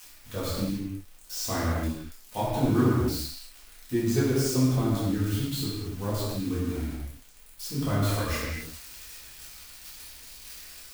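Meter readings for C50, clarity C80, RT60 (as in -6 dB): -2.0 dB, 0.0 dB, no single decay rate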